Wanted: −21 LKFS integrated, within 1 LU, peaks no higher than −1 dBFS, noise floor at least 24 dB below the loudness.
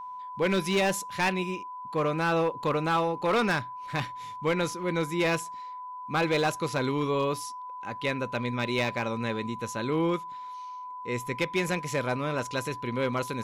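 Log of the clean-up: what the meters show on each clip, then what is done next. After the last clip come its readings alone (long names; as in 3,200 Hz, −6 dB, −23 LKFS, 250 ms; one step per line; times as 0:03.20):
share of clipped samples 1.4%; peaks flattened at −20.0 dBFS; interfering tone 1,000 Hz; level of the tone −37 dBFS; integrated loudness −29.0 LKFS; sample peak −20.0 dBFS; target loudness −21.0 LKFS
→ clipped peaks rebuilt −20 dBFS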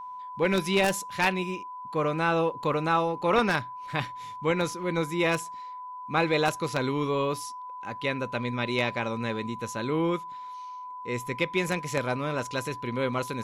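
share of clipped samples 0.0%; interfering tone 1,000 Hz; level of the tone −37 dBFS
→ notch filter 1,000 Hz, Q 30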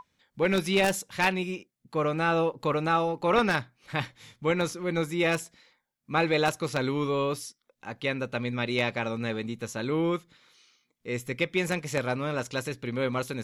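interfering tone none found; integrated loudness −28.5 LKFS; sample peak −11.0 dBFS; target loudness −21.0 LKFS
→ level +7.5 dB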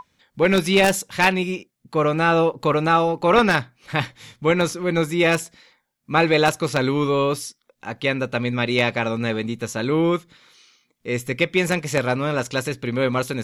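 integrated loudness −21.0 LKFS; sample peak −3.5 dBFS; background noise floor −73 dBFS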